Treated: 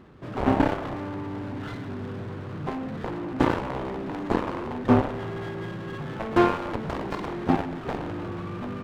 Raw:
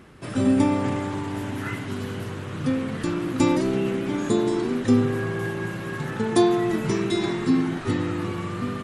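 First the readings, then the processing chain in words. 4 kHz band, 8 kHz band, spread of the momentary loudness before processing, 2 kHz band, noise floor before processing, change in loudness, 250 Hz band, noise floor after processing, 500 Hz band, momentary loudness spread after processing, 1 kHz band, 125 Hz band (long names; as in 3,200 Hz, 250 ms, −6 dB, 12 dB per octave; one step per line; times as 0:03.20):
−7.0 dB, below −15 dB, 10 LU, −3.0 dB, −33 dBFS, −4.0 dB, −5.0 dB, −36 dBFS, −3.5 dB, 12 LU, +2.0 dB, −3.5 dB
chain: harmonic generator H 3 −20 dB, 7 −13 dB, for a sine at −7.5 dBFS
low-pass filter 2,000 Hz 12 dB per octave
windowed peak hold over 9 samples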